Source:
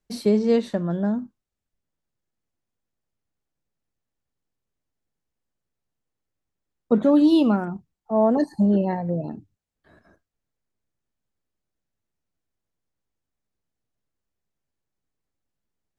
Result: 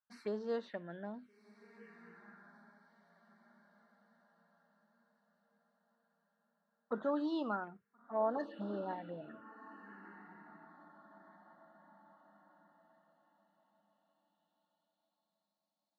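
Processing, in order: treble shelf 5.2 kHz -5.5 dB; echo that smears into a reverb 1391 ms, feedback 44%, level -13 dB; touch-sensitive phaser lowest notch 390 Hz, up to 2.3 kHz, full sweep at -17 dBFS; band-pass sweep 1.6 kHz -> 4.5 kHz, 12.54–15.67 s; trim +1.5 dB

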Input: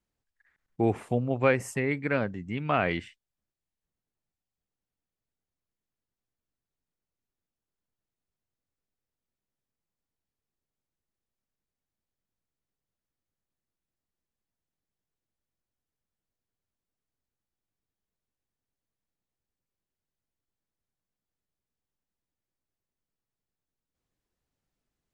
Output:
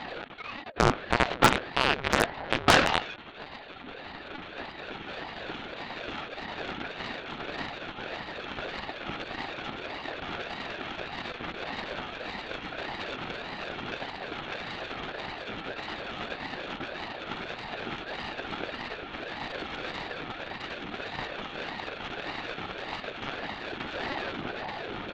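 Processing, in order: one-bit delta coder 32 kbps, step -32.5 dBFS; in parallel at +3 dB: peak limiter -21 dBFS, peak gain reduction 9.5 dB; on the sum: peaking EQ 1.1 kHz +11 dB 0.49 oct; comb 1 ms, depth 90%; companded quantiser 2-bit; de-hum 98.28 Hz, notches 15; on a send at -22 dB: reverberation RT60 3.8 s, pre-delay 70 ms; on the sum: Chebyshev shaper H 6 -11 dB, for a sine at 0.5 dBFS; LPC vocoder at 8 kHz pitch kept; Chebyshev shaper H 6 -8 dB, 8 -20 dB, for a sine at 3.5 dBFS; ring modulator with a swept carrier 540 Hz, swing 55%, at 1.7 Hz; trim -9 dB

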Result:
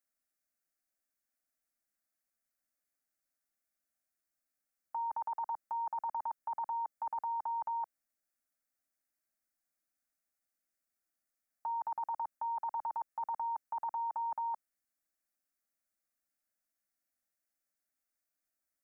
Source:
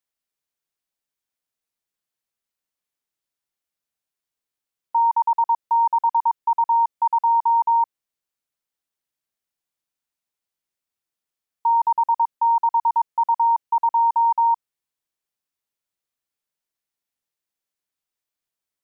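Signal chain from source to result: static phaser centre 640 Hz, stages 8

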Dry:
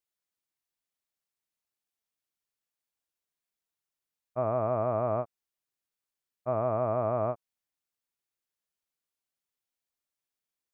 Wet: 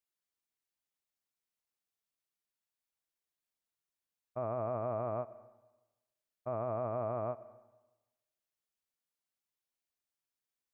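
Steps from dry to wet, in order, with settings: peak limiter -22.5 dBFS, peak gain reduction 5 dB; reverberation RT60 1.1 s, pre-delay 90 ms, DRR 18 dB; trim -3.5 dB

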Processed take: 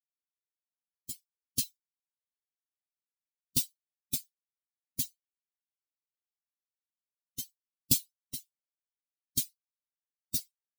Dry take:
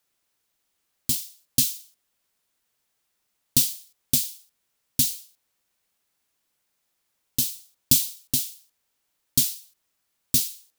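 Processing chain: expander on every frequency bin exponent 3; trim -4 dB

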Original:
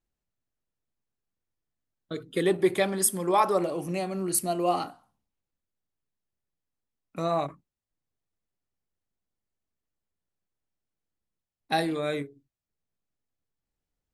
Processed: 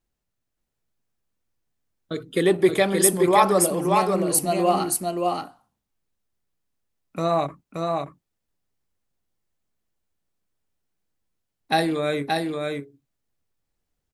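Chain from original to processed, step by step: delay 576 ms -3.5 dB; trim +5 dB

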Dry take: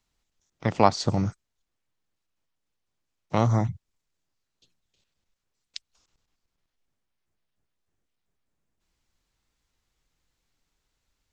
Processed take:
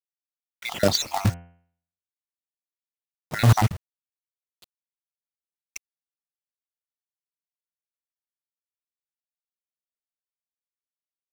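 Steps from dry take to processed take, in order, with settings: random holes in the spectrogram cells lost 53%; dynamic bell 3.3 kHz, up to +7 dB, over -57 dBFS, Q 2.1; companded quantiser 4-bit; 0.97–3.52 s: de-hum 86.04 Hz, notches 36; loudness maximiser +16 dB; trim -6 dB

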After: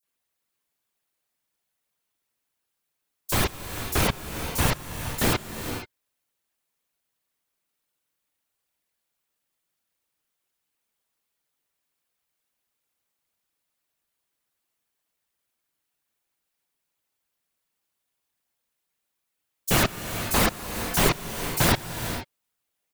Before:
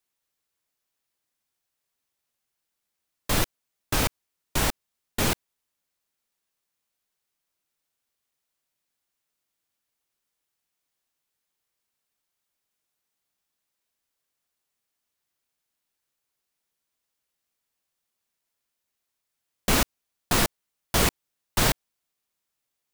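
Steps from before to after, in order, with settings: bands offset in time highs, lows 30 ms, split 5.6 kHz; whisper effect; gated-style reverb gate 500 ms rising, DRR 8 dB; trim +1.5 dB

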